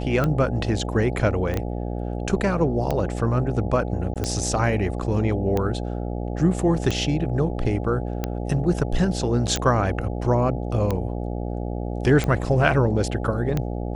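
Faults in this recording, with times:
mains buzz 60 Hz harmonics 14 −28 dBFS
scratch tick 45 rpm −11 dBFS
0:01.54: click −16 dBFS
0:04.14–0:04.16: drop-out 17 ms
0:09.56: click

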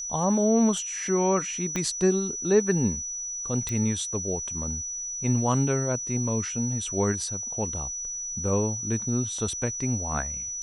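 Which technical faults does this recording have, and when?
whistle 5,900 Hz −31 dBFS
0:01.76: click −14 dBFS
0:03.69: click −17 dBFS

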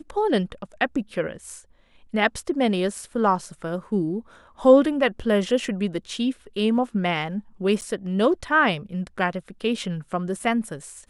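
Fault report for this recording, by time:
0:07.81–0:07.82: drop-out 8.7 ms

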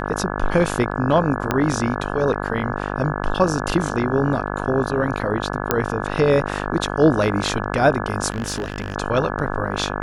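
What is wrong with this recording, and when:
mains buzz 50 Hz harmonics 34 −26 dBFS
0:01.51: click −5 dBFS
0:05.71: click −2 dBFS
0:08.30–0:08.96: clipping −20 dBFS

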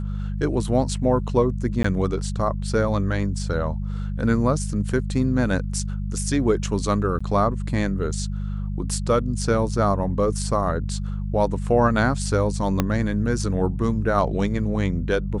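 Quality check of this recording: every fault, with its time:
mains hum 50 Hz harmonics 4 −27 dBFS
0:01.83–0:01.84: drop-out 14 ms
0:07.19–0:07.21: drop-out 15 ms
0:12.80: click −6 dBFS

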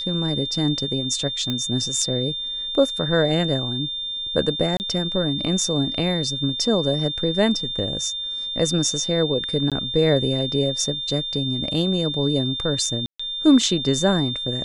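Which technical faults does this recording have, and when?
whistle 3,600 Hz −26 dBFS
0:01.50: click −12 dBFS
0:04.77–0:04.80: drop-out 29 ms
0:09.70–0:09.72: drop-out 17 ms
0:13.06–0:13.20: drop-out 135 ms

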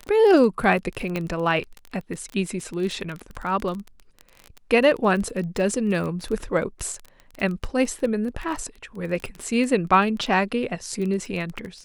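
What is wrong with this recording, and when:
surface crackle 22 per second −28 dBFS
0:01.16: click −13 dBFS

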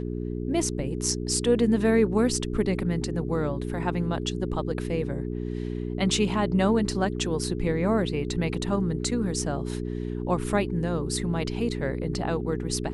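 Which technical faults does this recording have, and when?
mains hum 60 Hz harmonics 7 −31 dBFS

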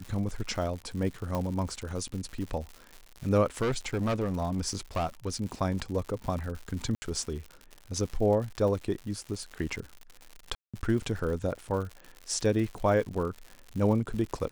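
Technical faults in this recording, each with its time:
surface crackle 140 per second −36 dBFS
0:01.35: click −18 dBFS
0:03.62–0:05.30: clipping −24.5 dBFS
0:06.95–0:07.02: drop-out 70 ms
0:10.55–0:10.74: drop-out 186 ms

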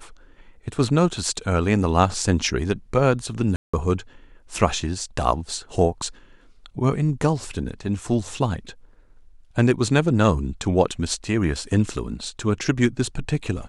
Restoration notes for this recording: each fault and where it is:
0:03.56–0:03.73: drop-out 175 ms

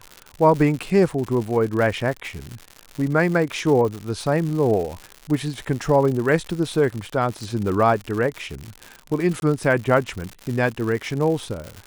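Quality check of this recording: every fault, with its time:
surface crackle 140 per second −27 dBFS
0:09.40–0:09.42: drop-out 21 ms

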